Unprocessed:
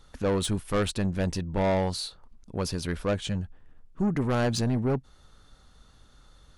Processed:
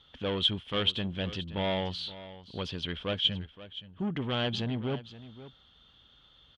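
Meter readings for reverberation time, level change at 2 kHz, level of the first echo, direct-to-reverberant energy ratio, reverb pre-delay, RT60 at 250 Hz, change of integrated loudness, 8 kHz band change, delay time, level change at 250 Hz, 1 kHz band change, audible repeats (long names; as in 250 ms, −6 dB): no reverb audible, −2.0 dB, −15.5 dB, no reverb audible, no reverb audible, no reverb audible, −3.0 dB, below −15 dB, 523 ms, −6.5 dB, −5.5 dB, 1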